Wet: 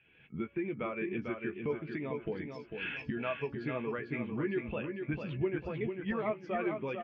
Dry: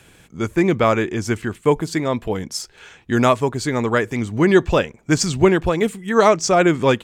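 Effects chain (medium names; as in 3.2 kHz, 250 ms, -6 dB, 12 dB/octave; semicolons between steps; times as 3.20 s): recorder AGC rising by 29 dB/s; bass shelf 87 Hz -8.5 dB; de-hum 282.1 Hz, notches 8; compression 3:1, threshold -30 dBFS, peak gain reduction 16 dB; four-pole ladder low-pass 3.1 kHz, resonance 55%; doubling 14 ms -7.5 dB; feedback delay 448 ms, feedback 47%, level -4 dB; spectral contrast expander 1.5:1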